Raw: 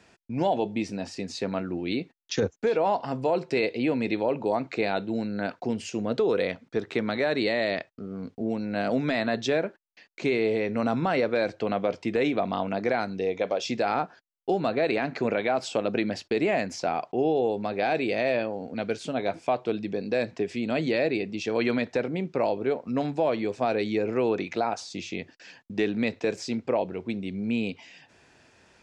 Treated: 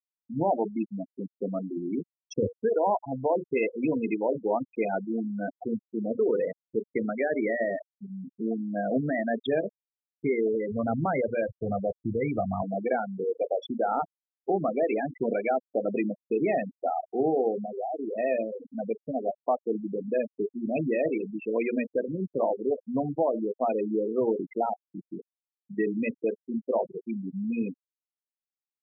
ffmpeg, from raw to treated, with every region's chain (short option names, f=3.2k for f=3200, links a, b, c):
-filter_complex "[0:a]asettb=1/sr,asplit=3[a][b][c];[a]atrim=end=10.234[d];[b]atrim=start=10.23:end=12.62,asetpts=PTS-STARTPTS,afade=t=in:d=0.004:c=qsin,afade=t=out:st=2.386:d=0.004:c=qsin,asubboost=boost=9.5:cutoff=120,adynamicsmooth=sensitivity=4.5:basefreq=3.2k[e];[c]atrim=start=12.616[f];[d][e]acrossfade=d=0.004:c1=hsin:c2=qsin[g];[g][f]acrossfade=d=0.004:c1=qsin:c2=hsin,asettb=1/sr,asplit=3[h][i][j];[h]atrim=end=17.564[k];[i]atrim=start=17.56:end=18.18,asetpts=PTS-STARTPTS,afade=t=in:d=0.004:c=qsin,afade=t=out:st=0.616:d=0.004:c=qsin,lowpass=f=2.4k:w=0.5412,lowpass=f=2.4k:w=1.3066,acompressor=threshold=-28dB:ratio=2.5:attack=3.2:release=140:knee=1:detection=peak[l];[j]atrim=start=18.176[m];[k][l]acrossfade=d=0.004:c1=hsin:c2=qsin[n];[n][m]acrossfade=d=0.004:c1=qsin:c2=hsin,highpass=60,bandreject=f=60:t=h:w=6,bandreject=f=120:t=h:w=6,bandreject=f=180:t=h:w=6,bandreject=f=240:t=h:w=6,bandreject=f=300:t=h:w=6,bandreject=f=360:t=h:w=6,bandreject=f=420:t=h:w=6,bandreject=f=480:t=h:w=6,bandreject=f=540:t=h:w=6,bandreject=f=600:t=h:w=6,afftfilt=real='re*gte(hypot(re,im),0.112)':imag='im*gte(hypot(re,im),0.112)':win_size=1024:overlap=0.75"